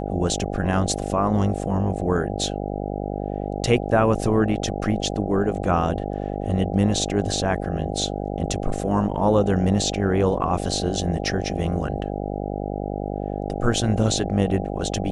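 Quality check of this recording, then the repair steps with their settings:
mains buzz 50 Hz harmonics 16 −28 dBFS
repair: hum removal 50 Hz, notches 16

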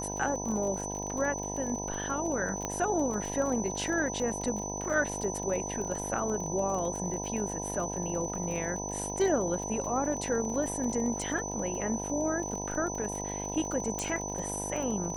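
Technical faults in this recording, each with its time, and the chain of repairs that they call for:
mains buzz 50 Hz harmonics 20 −38 dBFS
surface crackle 31 per second −35 dBFS
whistle 6,000 Hz −37 dBFS
0:02.65: click −18 dBFS
0:13.99: click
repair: click removal
hum removal 50 Hz, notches 20
notch filter 6,000 Hz, Q 30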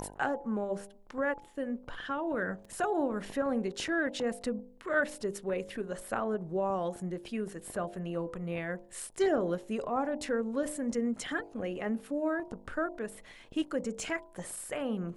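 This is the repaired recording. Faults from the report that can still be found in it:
0:02.65: click
0:13.99: click

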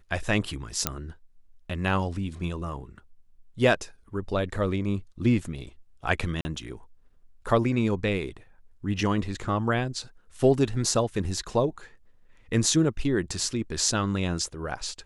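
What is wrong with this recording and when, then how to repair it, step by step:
0:00.87: click −5 dBFS
0:06.41–0:06.45: drop-out 40 ms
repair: click removal
repair the gap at 0:06.41, 40 ms

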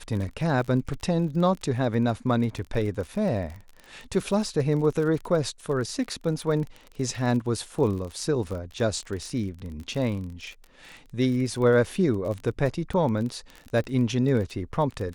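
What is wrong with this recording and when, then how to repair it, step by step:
surface crackle 31 per second −32 dBFS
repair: click removal

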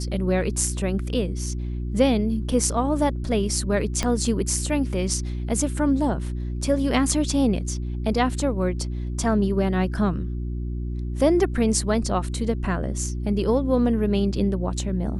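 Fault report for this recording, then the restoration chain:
mains hum 60 Hz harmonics 6 −28 dBFS
0:04.03: click −10 dBFS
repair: click removal
hum removal 60 Hz, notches 6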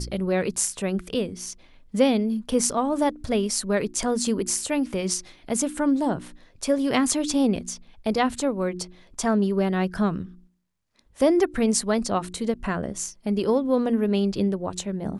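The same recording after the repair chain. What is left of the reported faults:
0:04.03: click

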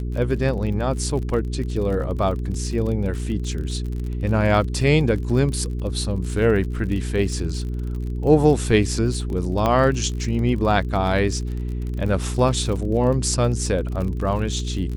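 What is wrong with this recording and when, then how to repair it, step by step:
surface crackle 44 per second −29 dBFS
mains hum 60 Hz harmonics 7 −26 dBFS
0:09.66: click −8 dBFS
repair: click removal
hum removal 60 Hz, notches 7

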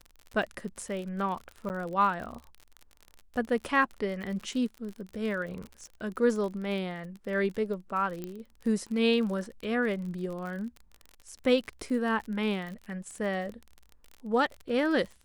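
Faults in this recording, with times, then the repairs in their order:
surface crackle 43 per second −36 dBFS
0:01.69–0:01.70: drop-out 9.7 ms
0:08.24: click −23 dBFS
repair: click removal
repair the gap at 0:01.69, 9.7 ms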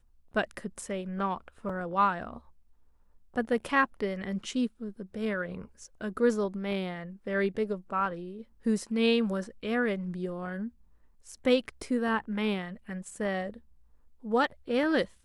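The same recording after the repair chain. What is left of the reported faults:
0:08.24: click

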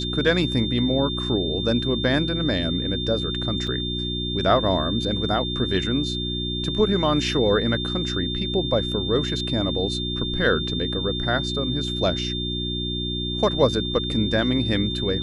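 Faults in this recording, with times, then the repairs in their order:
mains hum 60 Hz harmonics 6 −29 dBFS
whistle 3,600 Hz −28 dBFS
0:03.67: drop-out 4.5 ms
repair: hum removal 60 Hz, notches 6
notch filter 3,600 Hz, Q 30
repair the gap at 0:03.67, 4.5 ms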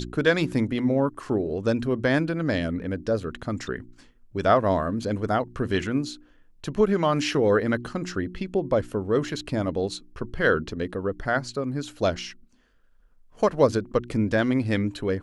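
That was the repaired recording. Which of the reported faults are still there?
none of them is left

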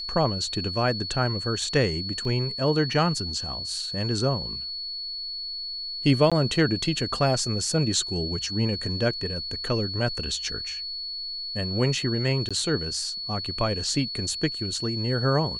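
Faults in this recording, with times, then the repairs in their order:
whistle 4,400 Hz −31 dBFS
0:02.25: drop-out 2.3 ms
0:06.30–0:06.32: drop-out 16 ms
0:12.49–0:12.51: drop-out 16 ms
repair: notch filter 4,400 Hz, Q 30
repair the gap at 0:02.25, 2.3 ms
repair the gap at 0:06.30, 16 ms
repair the gap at 0:12.49, 16 ms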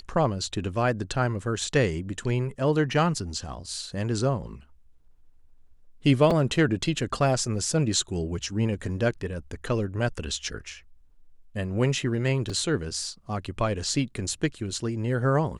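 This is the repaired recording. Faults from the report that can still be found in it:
none of them is left

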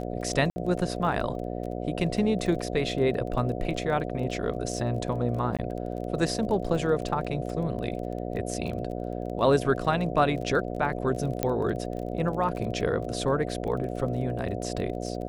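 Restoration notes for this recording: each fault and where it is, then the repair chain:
mains buzz 60 Hz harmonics 12 −33 dBFS
surface crackle 22 per second −35 dBFS
0:00.50–0:00.56: drop-out 60 ms
0:05.57–0:05.59: drop-out 17 ms
0:11.43: click −11 dBFS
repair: click removal
hum removal 60 Hz, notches 12
repair the gap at 0:00.50, 60 ms
repair the gap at 0:05.57, 17 ms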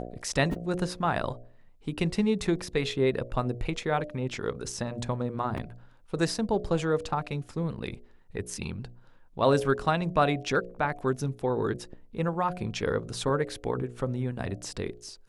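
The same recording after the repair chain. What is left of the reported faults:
none of them is left

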